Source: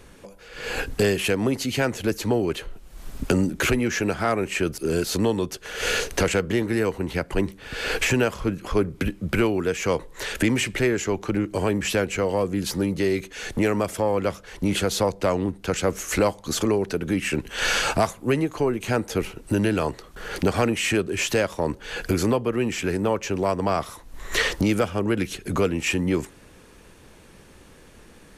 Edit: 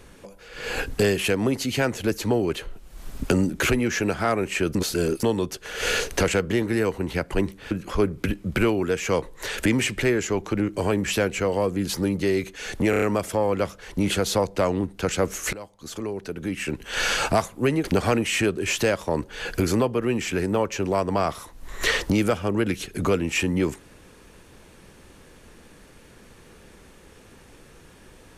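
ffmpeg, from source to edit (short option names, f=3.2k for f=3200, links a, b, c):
-filter_complex "[0:a]asplit=10[a][b][c][d][e][f][g][h][i][j];[a]atrim=end=4.752[k];[b]atrim=start=4.748:end=5.232,asetpts=PTS-STARTPTS,areverse[l];[c]atrim=start=5.228:end=7.712[m];[d]atrim=start=8.478:end=13.702[n];[e]atrim=start=13.668:end=13.702[o];[f]atrim=start=13.668:end=13.702[p];[g]atrim=start=13.668:end=13.702[q];[h]atrim=start=13.668:end=16.18,asetpts=PTS-STARTPTS,afade=t=out:st=2.508:d=0.004:c=hsin:silence=0.0944061[r];[i]atrim=start=16.18:end=18.492,asetpts=PTS-STARTPTS,afade=t=in:d=1.81:silence=0.0944061[s];[j]atrim=start=20.348[t];[k][l]acrossfade=d=0.004:c1=hsin:c2=hsin[u];[u][m]acrossfade=d=0.004:c1=hsin:c2=hsin[v];[v][n]acrossfade=d=0.004:c1=hsin:c2=hsin[w];[w][o]acrossfade=d=0.004:c1=hsin:c2=hsin[x];[x][p]acrossfade=d=0.004:c1=hsin:c2=hsin[y];[y][q]acrossfade=d=0.004:c1=hsin:c2=hsin[z];[r][s]concat=n=2:v=0:a=1[aa];[z][aa]acrossfade=d=0.004:c1=hsin:c2=hsin[ab];[ab][t]acrossfade=d=0.004:c1=hsin:c2=hsin"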